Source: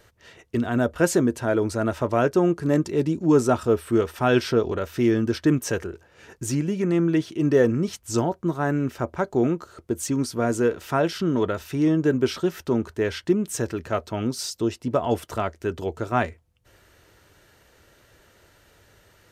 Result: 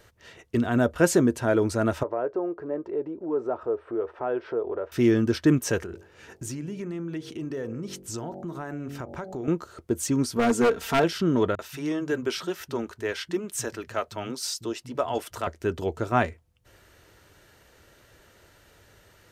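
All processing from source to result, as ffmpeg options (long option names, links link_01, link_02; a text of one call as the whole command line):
ffmpeg -i in.wav -filter_complex "[0:a]asettb=1/sr,asplit=3[link_01][link_02][link_03];[link_01]atrim=end=2.034[link_04];[link_02]atrim=start=2.03:end=4.92,asetpts=PTS-STARTPTS,afade=type=in:duration=0.004:curve=qsin,afade=type=out:start_time=2.886:duration=0.004:curve=qsin,lowpass=1100,acompressor=threshold=-30dB:ratio=2:attack=3.2:release=140:knee=1:detection=peak,lowshelf=frequency=280:width_type=q:width=1.5:gain=-13.5[link_05];[link_03]atrim=start=4.916[link_06];[link_04][link_05]acrossfade=duration=0.004:curve1=hsin:curve2=qsin[link_07];[link_07][link_06]acrossfade=duration=0.004:curve1=qsin:curve2=hsin,asettb=1/sr,asplit=3[link_08][link_09][link_10];[link_08]atrim=end=5.804[link_11];[link_09]atrim=start=5.8:end=9.48,asetpts=PTS-STARTPTS,afade=type=in:duration=0.004:curve=qsin,afade=type=out:start_time=3.676:duration=0.004:curve=qsin,bandreject=frequency=47.1:width_type=h:width=4,bandreject=frequency=94.2:width_type=h:width=4,bandreject=frequency=141.3:width_type=h:width=4,bandreject=frequency=188.4:width_type=h:width=4,bandreject=frequency=235.5:width_type=h:width=4,bandreject=frequency=282.6:width_type=h:width=4,bandreject=frequency=329.7:width_type=h:width=4,bandreject=frequency=376.8:width_type=h:width=4,bandreject=frequency=423.9:width_type=h:width=4,bandreject=frequency=471:width_type=h:width=4,bandreject=frequency=518.1:width_type=h:width=4,bandreject=frequency=565.2:width_type=h:width=4,bandreject=frequency=612.3:width_type=h:width=4,bandreject=frequency=659.4:width_type=h:width=4,bandreject=frequency=706.5:width_type=h:width=4,bandreject=frequency=753.6:width_type=h:width=4,bandreject=frequency=800.7:width_type=h:width=4,bandreject=frequency=847.8:width_type=h:width=4,acompressor=threshold=-32dB:ratio=4:attack=3.2:release=140:knee=1:detection=peak[link_12];[link_10]atrim=start=9.476[link_13];[link_11][link_12]acrossfade=duration=0.004:curve1=hsin:curve2=qsin[link_14];[link_14][link_13]acrossfade=duration=0.004:curve1=qsin:curve2=hsin,asettb=1/sr,asplit=3[link_15][link_16][link_17];[link_15]atrim=end=10.364[link_18];[link_16]atrim=start=10.36:end=11.04,asetpts=PTS-STARTPTS,afade=type=in:duration=0.004:curve=qsin,afade=type=out:start_time=0.676:duration=0.004:curve=qsin,aecho=1:1:4.4:0.68,atrim=end_sample=29988,acompressor=mode=upward:threshold=-28dB:ratio=2.5:attack=3.2:release=140:knee=2.83:detection=peak,aeval=exprs='0.2*(abs(mod(val(0)/0.2+3,4)-2)-1)':channel_layout=same[link_19];[link_17]atrim=start=11.036[link_20];[link_18][link_19]acrossfade=duration=0.004:curve1=hsin:curve2=qsin[link_21];[link_21][link_20]acrossfade=duration=0.004:curve1=qsin:curve2=hsin,asettb=1/sr,asplit=3[link_22][link_23][link_24];[link_22]atrim=end=11.554[link_25];[link_23]atrim=start=11.55:end=15.47,asetpts=PTS-STARTPTS,afade=type=in:duration=0.004:curve=qsin,afade=type=out:start_time=3.916:duration=0.004:curve=qsin,lowshelf=frequency=460:gain=-10.5,acrossover=split=170[link_26][link_27];[link_27]adelay=40[link_28];[link_26][link_28]amix=inputs=2:normalize=0,atrim=end_sample=172872[link_29];[link_24]atrim=start=15.466[link_30];[link_25][link_29]acrossfade=duration=0.004:curve1=hsin:curve2=qsin[link_31];[link_31][link_30]acrossfade=duration=0.004:curve1=qsin:curve2=hsin" out.wav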